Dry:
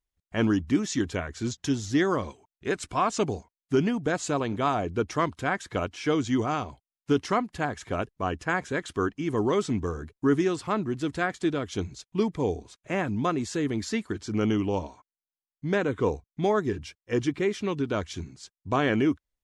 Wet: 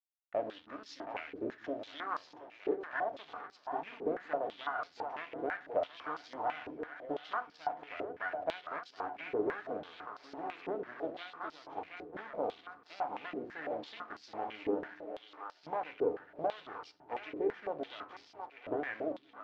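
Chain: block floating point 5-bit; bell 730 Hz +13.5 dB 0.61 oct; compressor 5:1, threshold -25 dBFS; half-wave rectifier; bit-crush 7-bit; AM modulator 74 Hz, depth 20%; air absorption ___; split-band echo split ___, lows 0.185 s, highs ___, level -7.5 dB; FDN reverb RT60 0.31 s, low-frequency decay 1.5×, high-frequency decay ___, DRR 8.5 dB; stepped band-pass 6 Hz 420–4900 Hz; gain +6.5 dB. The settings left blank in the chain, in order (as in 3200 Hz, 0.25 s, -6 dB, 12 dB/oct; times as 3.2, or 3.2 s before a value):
230 m, 350 Hz, 0.723 s, 0.65×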